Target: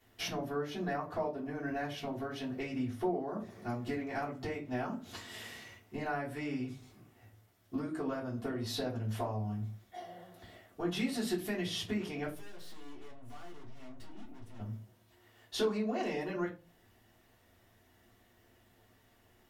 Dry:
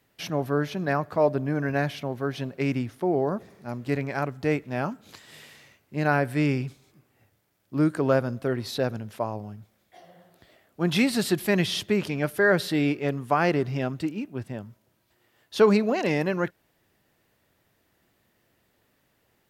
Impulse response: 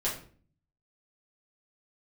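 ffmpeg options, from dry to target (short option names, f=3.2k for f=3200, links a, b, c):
-filter_complex "[0:a]acompressor=threshold=-35dB:ratio=6,asettb=1/sr,asplit=3[a][b][c];[a]atrim=end=12.264[d];[b]atrim=start=12.26:end=14.6,asetpts=PTS-STARTPTS,afade=t=in:d=0.004:c=qsin,afade=t=out:st=2.336:d=0.004:c=qsin,aeval=exprs='(tanh(447*val(0)+0.75)-tanh(0.75))/447':c=same[e];[c]atrim=start=14.596[f];[d][e]acrossfade=d=0.004:c1=hsin:c2=qsin[g];[g][f]acrossfade=d=0.004:c1=qsin:c2=hsin[h];[1:a]atrim=start_sample=2205,asetrate=79380,aresample=44100[i];[h][i]afir=irnorm=-1:irlink=0"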